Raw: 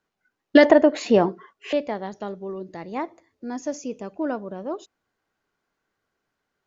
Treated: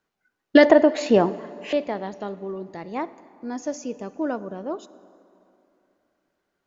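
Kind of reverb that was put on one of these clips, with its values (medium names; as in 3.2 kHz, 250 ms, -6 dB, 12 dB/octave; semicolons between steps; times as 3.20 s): plate-style reverb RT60 2.9 s, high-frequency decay 0.65×, DRR 16 dB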